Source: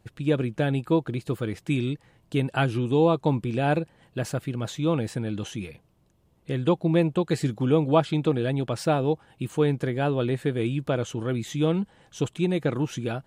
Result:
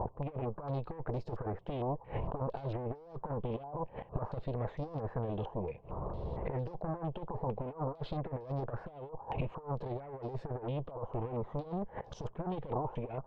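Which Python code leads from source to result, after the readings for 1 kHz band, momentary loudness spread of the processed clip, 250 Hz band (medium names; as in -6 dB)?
-8.5 dB, 4 LU, -16.5 dB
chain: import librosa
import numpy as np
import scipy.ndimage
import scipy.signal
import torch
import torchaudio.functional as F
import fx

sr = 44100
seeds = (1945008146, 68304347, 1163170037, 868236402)

y = fx.tube_stage(x, sr, drive_db=32.0, bias=0.5)
y = fx.gate_flip(y, sr, shuts_db=-47.0, range_db=-26)
y = fx.band_shelf(y, sr, hz=670.0, db=14.5, octaves=1.7)
y = fx.over_compress(y, sr, threshold_db=-55.0, ratio=-0.5)
y = fx.tilt_eq(y, sr, slope=-3.5)
y = fx.filter_held_lowpass(y, sr, hz=4.4, low_hz=960.0, high_hz=5200.0)
y = y * librosa.db_to_amplitude(12.0)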